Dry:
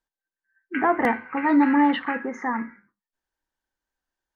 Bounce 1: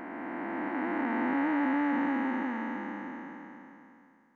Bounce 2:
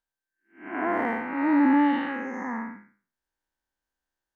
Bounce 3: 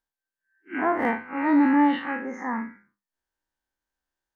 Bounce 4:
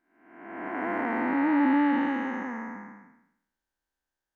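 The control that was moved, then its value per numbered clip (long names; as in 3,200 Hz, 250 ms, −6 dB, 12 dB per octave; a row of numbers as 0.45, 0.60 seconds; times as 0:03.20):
spectrum smeared in time, width: 1,800, 232, 83, 596 milliseconds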